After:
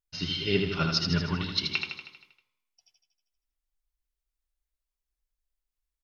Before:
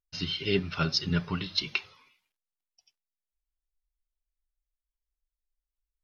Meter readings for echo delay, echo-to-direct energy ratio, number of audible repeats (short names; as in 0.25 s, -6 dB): 79 ms, -3.0 dB, 7